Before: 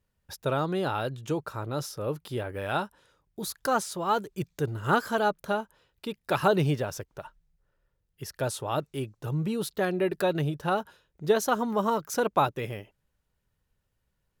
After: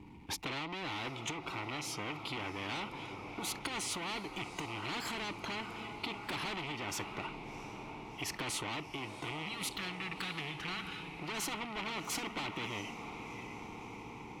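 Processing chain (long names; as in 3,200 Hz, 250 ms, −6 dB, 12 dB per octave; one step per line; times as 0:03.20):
loose part that buzzes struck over −32 dBFS, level −33 dBFS
power curve on the samples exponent 0.7
gain on a spectral selection 0:09.44–0:11.02, 210–1,100 Hz −28 dB
hard clipping −26.5 dBFS, distortion −7 dB
formant filter u
low-shelf EQ 240 Hz +11 dB
downward compressor 3 to 1, threshold −41 dBFS, peak gain reduction 10 dB
feedback delay with all-pass diffusion 693 ms, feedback 64%, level −13 dB
noise reduction from a noise print of the clip's start 9 dB
every bin compressed towards the loudest bin 4 to 1
level +9.5 dB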